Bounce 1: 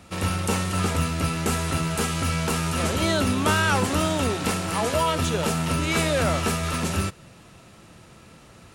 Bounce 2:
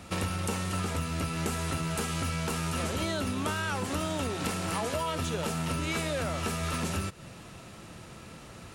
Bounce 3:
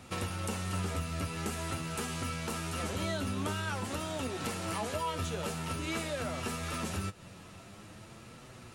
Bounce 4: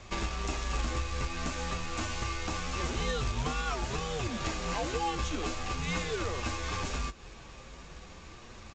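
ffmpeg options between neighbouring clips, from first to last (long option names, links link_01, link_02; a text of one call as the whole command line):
ffmpeg -i in.wav -af "acompressor=threshold=-30dB:ratio=10,volume=2dB" out.wav
ffmpeg -i in.wav -af "flanger=delay=7.8:depth=3.1:regen=43:speed=0.47:shape=triangular" out.wav
ffmpeg -i in.wav -af "afreqshift=-150,aresample=16000,acrusher=bits=3:mode=log:mix=0:aa=0.000001,aresample=44100,volume=2.5dB" out.wav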